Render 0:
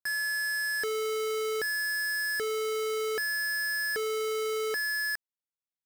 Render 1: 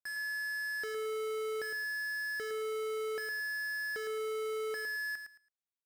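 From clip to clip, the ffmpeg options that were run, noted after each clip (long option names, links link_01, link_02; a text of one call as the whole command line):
ffmpeg -i in.wav -af "highshelf=frequency=9300:gain=-5.5,aecho=1:1:110|220|330:0.422|0.0886|0.0186,volume=-8.5dB" out.wav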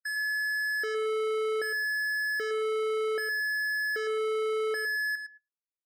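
ffmpeg -i in.wav -af "afftdn=noise_reduction=34:noise_floor=-48,volume=7dB" out.wav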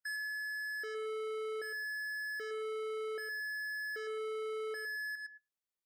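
ffmpeg -i in.wav -af "aeval=exprs='0.0501*(cos(1*acos(clip(val(0)/0.0501,-1,1)))-cos(1*PI/2))+0.00112*(cos(3*acos(clip(val(0)/0.0501,-1,1)))-cos(3*PI/2))':channel_layout=same,alimiter=level_in=13.5dB:limit=-24dB:level=0:latency=1:release=173,volume=-13.5dB" out.wav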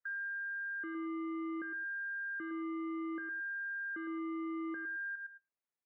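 ffmpeg -i in.wav -af "highpass=frequency=230:width_type=q:width=0.5412,highpass=frequency=230:width_type=q:width=1.307,lowpass=frequency=2400:width_type=q:width=0.5176,lowpass=frequency=2400:width_type=q:width=0.7071,lowpass=frequency=2400:width_type=q:width=1.932,afreqshift=-110" out.wav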